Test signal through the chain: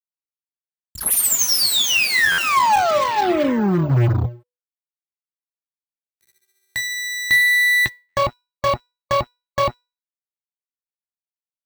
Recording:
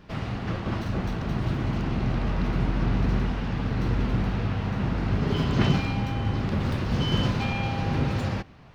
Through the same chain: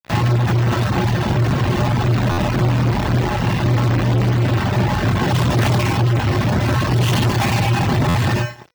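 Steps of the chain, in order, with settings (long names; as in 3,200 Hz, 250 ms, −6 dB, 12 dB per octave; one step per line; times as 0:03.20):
lower of the sound and its delayed copy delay 1.1 ms
parametric band 3,400 Hz −4 dB 2.4 octaves
bad sample-rate conversion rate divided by 2×, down filtered, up hold
in parallel at −0.5 dB: downward compressor 4 to 1, threshold −42 dBFS
on the sum: tuned comb filter 120 Hz, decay 1.1 s, harmonics odd, mix 90%
hum removal 148.8 Hz, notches 2
fuzz pedal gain 47 dB, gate −56 dBFS
reverb reduction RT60 0.7 s
high-pass filter 77 Hz 12 dB per octave
parametric band 470 Hz −5 dB 0.24 octaves
tuned comb filter 490 Hz, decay 0.33 s, harmonics all, mix 40%
buffer that repeats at 0:02.31/0:08.08, samples 512, times 5
level +6.5 dB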